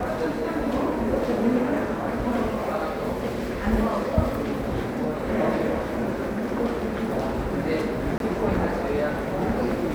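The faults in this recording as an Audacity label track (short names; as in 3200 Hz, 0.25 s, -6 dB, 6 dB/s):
8.180000	8.200000	gap 22 ms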